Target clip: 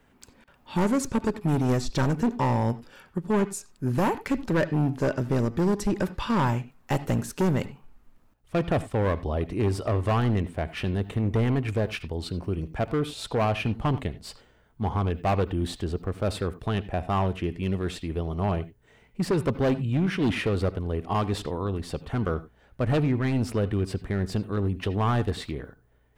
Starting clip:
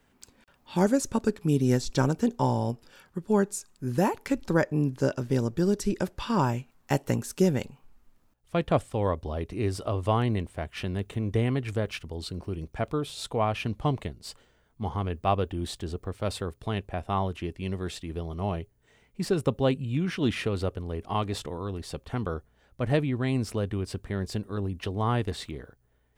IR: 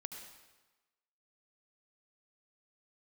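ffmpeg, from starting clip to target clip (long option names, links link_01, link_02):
-filter_complex "[0:a]volume=24dB,asoftclip=hard,volume=-24dB,asplit=2[link_01][link_02];[1:a]atrim=start_sample=2205,atrim=end_sample=4410,lowpass=3600[link_03];[link_02][link_03]afir=irnorm=-1:irlink=0,volume=1.5dB[link_04];[link_01][link_04]amix=inputs=2:normalize=0"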